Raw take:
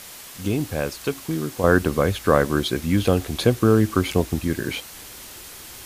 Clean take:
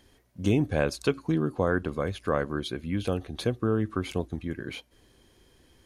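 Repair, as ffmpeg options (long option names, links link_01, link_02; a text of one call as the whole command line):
ffmpeg -i in.wav -af "afwtdn=0.011,asetnsamples=nb_out_samples=441:pad=0,asendcmd='1.64 volume volume -9.5dB',volume=0dB" out.wav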